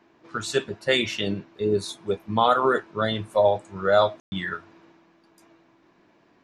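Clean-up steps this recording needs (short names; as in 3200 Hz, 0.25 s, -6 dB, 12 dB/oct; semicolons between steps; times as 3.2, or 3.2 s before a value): room tone fill 4.2–4.32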